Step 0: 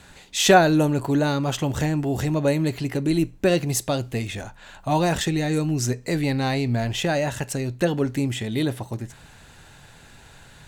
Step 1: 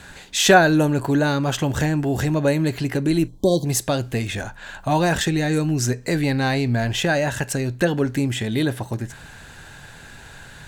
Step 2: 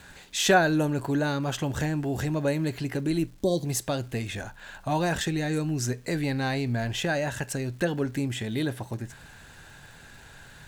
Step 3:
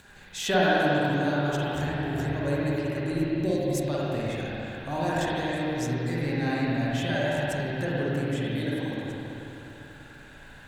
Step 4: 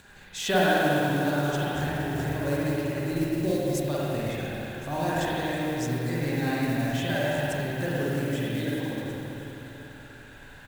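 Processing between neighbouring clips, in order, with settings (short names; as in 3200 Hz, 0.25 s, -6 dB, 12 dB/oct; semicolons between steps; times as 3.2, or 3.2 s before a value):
spectral delete 3.28–3.65, 1100–3100 Hz; bell 1600 Hz +7.5 dB 0.21 oct; in parallel at -2 dB: compressor, threshold -29 dBFS, peak gain reduction 19 dB
crackle 590/s -42 dBFS; gain -7 dB
upward compressor, threshold -45 dBFS; spring tank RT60 3.3 s, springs 49/54 ms, chirp 45 ms, DRR -7.5 dB; gain -7.5 dB
modulation noise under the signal 21 dB; echo 1.07 s -18 dB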